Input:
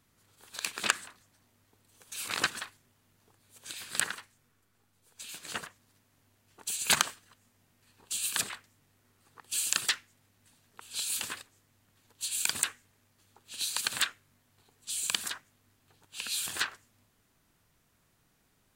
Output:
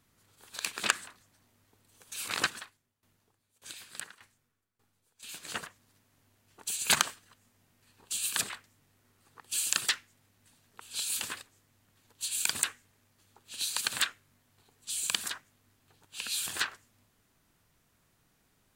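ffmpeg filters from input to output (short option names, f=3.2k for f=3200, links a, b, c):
-filter_complex "[0:a]asettb=1/sr,asplit=3[a][b][c];[a]atrim=end=2.444[d];[b]atrim=start=2.44:end=5.23,asetpts=PTS-STARTPTS,afade=t=in:d=0.004:c=qsin,afade=t=out:st=2.786:d=0.004:c=qsin,aeval=exprs='val(0)*pow(10,-18*if(lt(mod(1.7*n/s,1),2*abs(1.7)/1000),1-mod(1.7*n/s,1)/(2*abs(1.7)/1000),(mod(1.7*n/s,1)-2*abs(1.7)/1000)/(1-2*abs(1.7)/1000))/20)':c=same[e];[c]atrim=start=5.226[f];[d][e]acrossfade=d=0.004:c1=hsin:c2=qsin[g];[g][f]acrossfade=d=0.004:c1=qsin:c2=hsin"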